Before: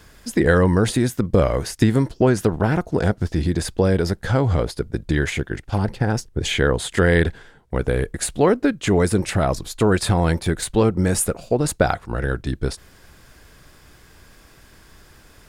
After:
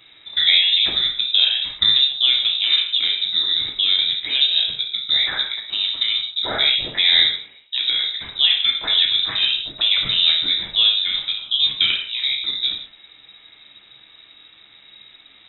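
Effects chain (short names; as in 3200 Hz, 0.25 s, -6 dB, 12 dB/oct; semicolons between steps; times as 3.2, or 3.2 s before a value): non-linear reverb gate 0.2 s falling, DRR -0.5 dB; inverted band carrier 3800 Hz; gain -3 dB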